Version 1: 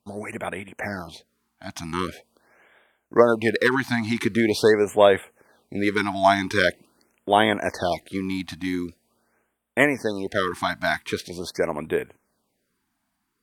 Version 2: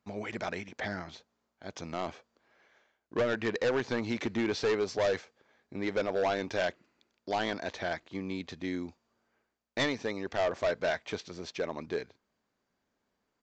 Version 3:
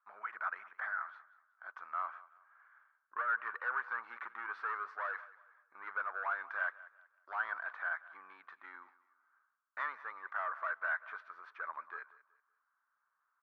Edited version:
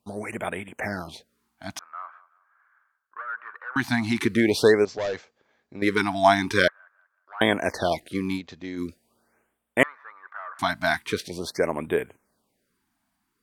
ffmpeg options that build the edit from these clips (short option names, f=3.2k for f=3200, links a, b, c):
-filter_complex "[2:a]asplit=3[a][b][c];[1:a]asplit=2[d][e];[0:a]asplit=6[f][g][h][i][j][k];[f]atrim=end=1.792[l];[a]atrim=start=1.788:end=3.762[m];[g]atrim=start=3.758:end=4.852[n];[d]atrim=start=4.848:end=5.822[o];[h]atrim=start=5.818:end=6.682[p];[b]atrim=start=6.678:end=7.412[q];[i]atrim=start=7.408:end=8.41[r];[e]atrim=start=8.35:end=8.82[s];[j]atrim=start=8.76:end=9.832[t];[c]atrim=start=9.828:end=10.592[u];[k]atrim=start=10.588[v];[l][m]acrossfade=d=0.004:c1=hsin:c2=hsin[w];[w][n]acrossfade=d=0.004:c1=hsin:c2=hsin[x];[x][o]acrossfade=d=0.004:c1=hsin:c2=hsin[y];[y][p]acrossfade=d=0.004:c1=hsin:c2=hsin[z];[z][q]acrossfade=d=0.004:c1=hsin:c2=hsin[aa];[aa][r]acrossfade=d=0.004:c1=hsin:c2=hsin[ab];[ab][s]acrossfade=d=0.06:c1=tri:c2=tri[ac];[ac][t]acrossfade=d=0.06:c1=tri:c2=tri[ad];[ad][u]acrossfade=d=0.004:c1=hsin:c2=hsin[ae];[ae][v]acrossfade=d=0.004:c1=hsin:c2=hsin"